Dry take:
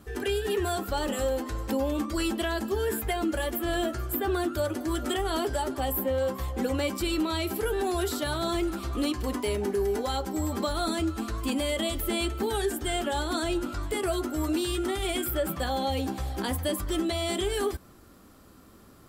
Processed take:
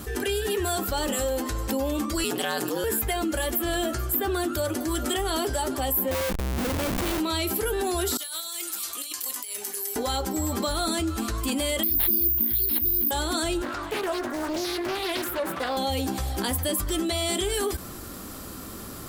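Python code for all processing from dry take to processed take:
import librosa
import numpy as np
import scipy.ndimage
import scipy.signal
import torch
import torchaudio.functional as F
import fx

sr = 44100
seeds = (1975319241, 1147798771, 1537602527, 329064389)

y = fx.chain(x, sr, fx.ring_mod(carrier_hz=90.0),
    fx.highpass(hz=260.0, slope=12),
    fx.env_flatten(amount_pct=50), at=(2.24, 2.84))
y = fx.chain(y, sr, fx.schmitt(flips_db=-30.0),
    fx.peak_eq(hz=6400.0, db=-4.0, octaves=1.9), at=(6.11, 7.2))
y = fx.chain(y, sr, fx.highpass(hz=170.0, slope=6),
    fx.differentiator(),
    fx.over_compress(threshold_db=-45.0, ratio=-0.5), at=(8.17, 9.96))
y = fx.chain(y, sr, fx.brickwall_bandstop(low_hz=370.0, high_hz=9400.0),
    fx.resample_bad(factor=3, down='none', up='zero_stuff'), at=(11.83, 13.11))
y = fx.chain(y, sr, fx.highpass(hz=150.0, slope=6),
    fx.bass_treble(bass_db=-10, treble_db=-12),
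    fx.doppler_dist(depth_ms=0.58), at=(13.62, 15.77))
y = fx.high_shelf(y, sr, hz=4200.0, db=8.5)
y = fx.env_flatten(y, sr, amount_pct=50)
y = y * 10.0 ** (-4.5 / 20.0)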